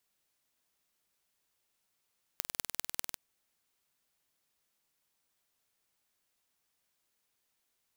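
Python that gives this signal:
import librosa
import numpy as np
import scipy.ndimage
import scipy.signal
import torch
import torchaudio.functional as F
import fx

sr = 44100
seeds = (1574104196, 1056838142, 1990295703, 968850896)

y = fx.impulse_train(sr, length_s=0.77, per_s=20.2, accent_every=4, level_db=-4.0)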